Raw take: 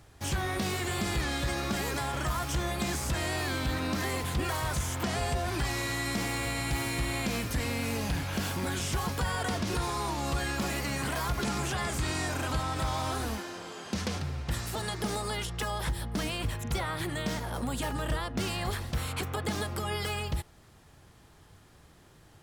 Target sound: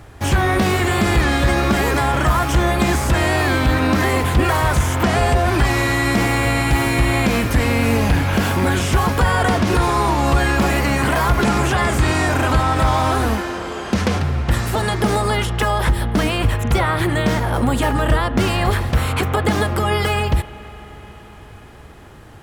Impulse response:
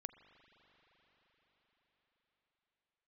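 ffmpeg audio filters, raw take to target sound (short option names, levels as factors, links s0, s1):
-filter_complex "[0:a]equalizer=f=160:t=o:w=0.3:g=-5,asplit=2[s0][s1];[1:a]atrim=start_sample=2205,lowpass=3100[s2];[s1][s2]afir=irnorm=-1:irlink=0,volume=2[s3];[s0][s3]amix=inputs=2:normalize=0,volume=2.82"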